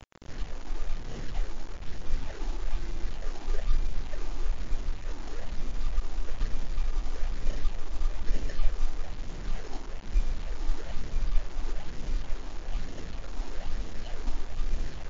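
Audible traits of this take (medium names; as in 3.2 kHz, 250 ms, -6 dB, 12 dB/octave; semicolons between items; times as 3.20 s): aliases and images of a low sample rate 1.2 kHz, jitter 0%; phasing stages 6, 1.1 Hz, lowest notch 130–1200 Hz; a quantiser's noise floor 8-bit, dither none; WMA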